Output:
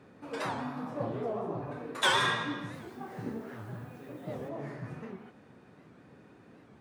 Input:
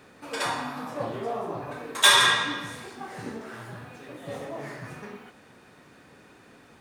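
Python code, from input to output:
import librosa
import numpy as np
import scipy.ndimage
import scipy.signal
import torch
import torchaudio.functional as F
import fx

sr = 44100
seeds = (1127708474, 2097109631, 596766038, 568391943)

y = scipy.signal.sosfilt(scipy.signal.butter(2, 110.0, 'highpass', fs=sr, output='sos'), x)
y = fx.tilt_eq(y, sr, slope=-3.0)
y = fx.dmg_noise_colour(y, sr, seeds[0], colour='blue', level_db=-64.0, at=(2.73, 4.48), fade=0.02)
y = fx.record_warp(y, sr, rpm=78.0, depth_cents=160.0)
y = F.gain(torch.from_numpy(y), -6.0).numpy()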